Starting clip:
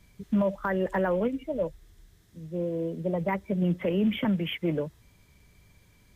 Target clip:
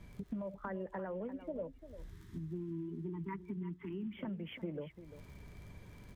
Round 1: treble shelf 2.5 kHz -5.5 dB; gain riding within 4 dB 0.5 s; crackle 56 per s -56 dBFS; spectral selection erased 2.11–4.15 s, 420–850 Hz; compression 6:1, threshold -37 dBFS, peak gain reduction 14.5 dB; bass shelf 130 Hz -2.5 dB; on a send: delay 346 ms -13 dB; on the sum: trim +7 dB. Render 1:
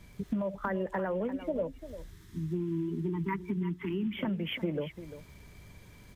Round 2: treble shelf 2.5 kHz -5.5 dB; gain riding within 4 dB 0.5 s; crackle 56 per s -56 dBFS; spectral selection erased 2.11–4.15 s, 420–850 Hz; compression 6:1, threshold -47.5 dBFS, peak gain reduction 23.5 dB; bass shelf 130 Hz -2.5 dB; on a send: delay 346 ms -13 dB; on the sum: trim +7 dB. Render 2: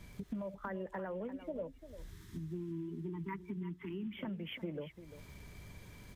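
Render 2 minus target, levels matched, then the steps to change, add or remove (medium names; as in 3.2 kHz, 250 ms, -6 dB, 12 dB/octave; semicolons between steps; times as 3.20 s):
4 kHz band +5.5 dB
change: treble shelf 2.5 kHz -15 dB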